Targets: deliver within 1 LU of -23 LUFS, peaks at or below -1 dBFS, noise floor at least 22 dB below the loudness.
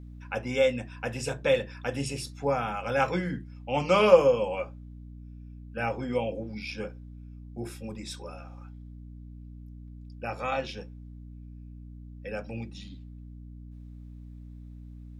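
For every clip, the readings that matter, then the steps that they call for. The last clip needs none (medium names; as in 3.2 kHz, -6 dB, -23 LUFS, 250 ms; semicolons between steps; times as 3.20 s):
hum 60 Hz; highest harmonic 300 Hz; hum level -42 dBFS; loudness -29.0 LUFS; peak level -4.5 dBFS; loudness target -23.0 LUFS
-> de-hum 60 Hz, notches 5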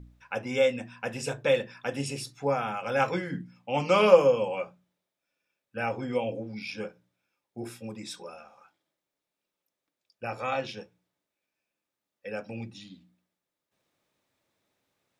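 hum not found; loudness -28.0 LUFS; peak level -4.5 dBFS; loudness target -23.0 LUFS
-> trim +5 dB; peak limiter -1 dBFS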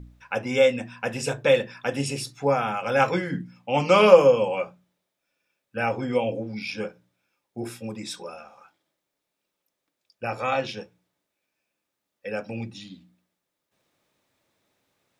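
loudness -23.5 LUFS; peak level -1.0 dBFS; noise floor -82 dBFS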